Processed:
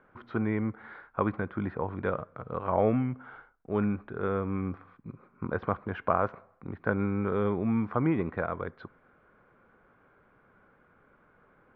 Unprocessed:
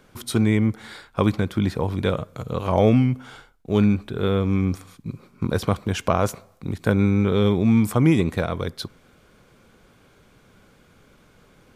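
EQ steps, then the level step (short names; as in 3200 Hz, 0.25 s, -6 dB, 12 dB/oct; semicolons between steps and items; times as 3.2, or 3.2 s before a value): synth low-pass 1500 Hz, resonance Q 1.7; air absorption 280 m; low shelf 250 Hz -9 dB; -5.0 dB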